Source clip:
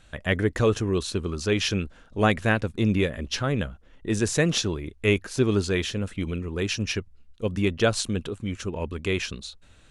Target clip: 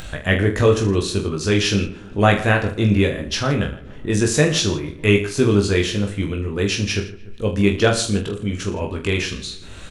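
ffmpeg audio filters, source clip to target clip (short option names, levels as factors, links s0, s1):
-filter_complex "[0:a]asplit=2[s0][s1];[s1]adelay=147,lowpass=f=2400:p=1,volume=0.112,asplit=2[s2][s3];[s3]adelay=147,lowpass=f=2400:p=1,volume=0.46,asplit=2[s4][s5];[s5]adelay=147,lowpass=f=2400:p=1,volume=0.46,asplit=2[s6][s7];[s7]adelay=147,lowpass=f=2400:p=1,volume=0.46[s8];[s2][s4][s6][s8]amix=inputs=4:normalize=0[s9];[s0][s9]amix=inputs=2:normalize=0,acompressor=mode=upward:threshold=0.0355:ratio=2.5,asplit=2[s10][s11];[s11]aecho=0:1:20|45|76.25|115.3|164.1:0.631|0.398|0.251|0.158|0.1[s12];[s10][s12]amix=inputs=2:normalize=0,volume=1.58"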